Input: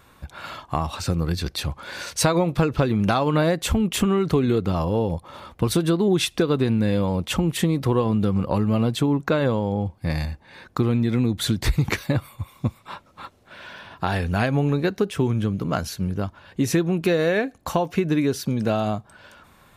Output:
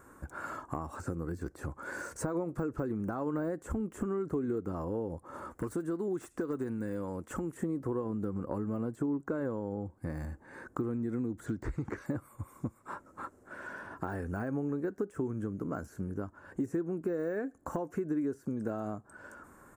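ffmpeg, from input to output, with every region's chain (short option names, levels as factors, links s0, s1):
-filter_complex "[0:a]asettb=1/sr,asplit=3[s0][s1][s2];[s0]atrim=end=5.524[s3];[s1]atrim=start=5.52:end=7.54,asetpts=PTS-STARTPTS,afade=t=in:d=0.004:c=qsin,afade=t=out:st=2.016:d=0.004:c=qsin,tiltshelf=f=1200:g=-4.5,aeval=exprs='0.178*(abs(mod(val(0)/0.178+3,4)-2)-1)':c=same[s4];[s2]atrim=start=7.536[s5];[s3][s4]acrossfade=d=0.004:c1=hsin:c2=qsin[s6];[s6][s5]acrossfade=d=0.004:c1=qsin:c2=hsin,asettb=1/sr,asplit=3[s7][s8][s9];[s7]atrim=end=11.464[s10];[s8]atrim=start=11.46:end=12.06,asetpts=PTS-STARTPTS,afade=t=in:d=0.004:c=qsin,afade=t=out:st=0.596:d=0.004:c=qsin,lowpass=3600,highshelf=f=2400:g=9.5[s11];[s9]atrim=start=12.056[s12];[s10][s11]acrossfade=d=0.004:c1=hsin:c2=qsin[s13];[s13][s12]acrossfade=d=0.004:c1=qsin:c2=hsin,deesser=0.95,firequalizer=gain_entry='entry(170,0);entry(290,10);entry(710,1);entry(1500,6);entry(2400,-11);entry(3600,-19);entry(7400,7);entry(11000,0)':delay=0.05:min_phase=1,acompressor=threshold=0.0282:ratio=2.5,volume=0.501"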